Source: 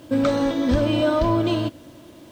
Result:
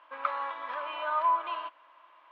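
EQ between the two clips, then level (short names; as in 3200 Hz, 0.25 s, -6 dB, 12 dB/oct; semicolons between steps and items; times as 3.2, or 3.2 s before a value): ladder high-pass 970 Hz, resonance 70%; Chebyshev low-pass 2600 Hz, order 3; +3.5 dB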